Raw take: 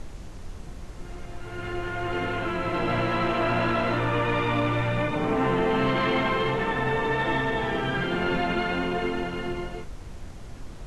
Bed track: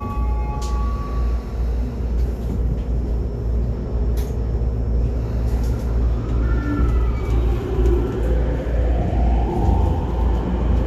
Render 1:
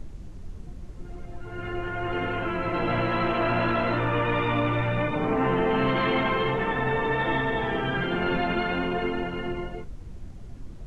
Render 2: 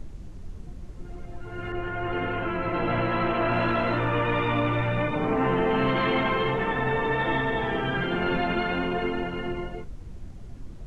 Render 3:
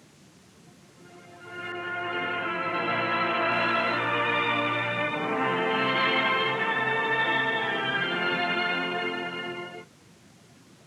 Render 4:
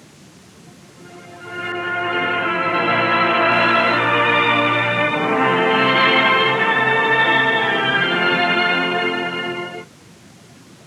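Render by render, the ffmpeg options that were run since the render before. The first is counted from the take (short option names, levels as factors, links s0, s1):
-af "afftdn=nr=10:nf=-40"
-filter_complex "[0:a]asettb=1/sr,asplit=3[s0][s1][s2];[s0]atrim=end=1.724[s3];[s1]atrim=start=1.72:end=3.52,asetpts=PTS-STARTPTS,afade=t=in:d=0.004:c=qsin,afade=t=out:st=1.796:d=0.004:c=qsin,adynamicequalizer=threshold=0.00562:dfrequency=3600:dqfactor=0.7:tfrequency=3600:tqfactor=0.7:attack=5:release=100:ratio=0.375:range=3:mode=cutabove:tftype=highshelf[s4];[s2]atrim=start=3.516[s5];[s3][s4]acrossfade=d=0.004:c1=hsin:c2=qsin[s6];[s6][s5]acrossfade=d=0.004:c1=qsin:c2=hsin"
-af "highpass=f=130:w=0.5412,highpass=f=130:w=1.3066,tiltshelf=f=970:g=-7"
-af "volume=3.16"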